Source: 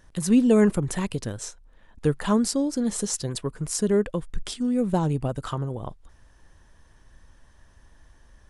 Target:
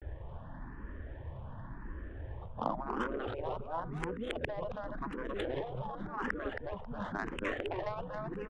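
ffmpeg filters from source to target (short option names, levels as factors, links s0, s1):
-filter_complex "[0:a]areverse,aresample=8000,aresample=44100,asplit=2[s0][s1];[s1]aecho=0:1:271|542|813:0.631|0.145|0.0334[s2];[s0][s2]amix=inputs=2:normalize=0,acompressor=threshold=0.02:ratio=6,afftfilt=real='re*lt(hypot(re,im),0.0355)':imag='im*lt(hypot(re,im),0.0355)':win_size=1024:overlap=0.75,adynamicsmooth=sensitivity=7:basefreq=1100,asplit=2[s3][s4];[s4]afreqshift=0.92[s5];[s3][s5]amix=inputs=2:normalize=1,volume=7.08"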